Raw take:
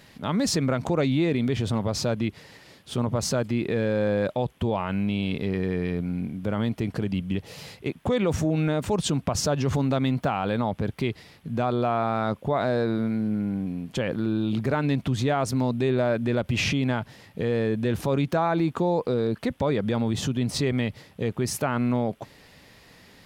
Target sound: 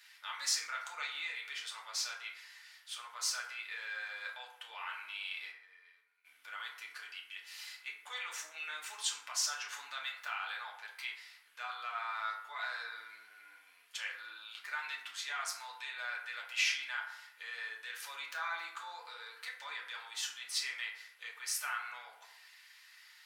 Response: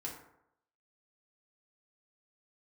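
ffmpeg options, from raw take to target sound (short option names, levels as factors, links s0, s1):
-filter_complex "[0:a]asplit=3[s0][s1][s2];[s0]afade=t=out:st=5.5:d=0.02[s3];[s1]agate=range=0.0224:threshold=0.2:ratio=3:detection=peak,afade=t=in:st=5.5:d=0.02,afade=t=out:st=6.24:d=0.02[s4];[s2]afade=t=in:st=6.24:d=0.02[s5];[s3][s4][s5]amix=inputs=3:normalize=0,highpass=f=1400:w=0.5412,highpass=f=1400:w=1.3066[s6];[1:a]atrim=start_sample=2205[s7];[s6][s7]afir=irnorm=-1:irlink=0,volume=0.841"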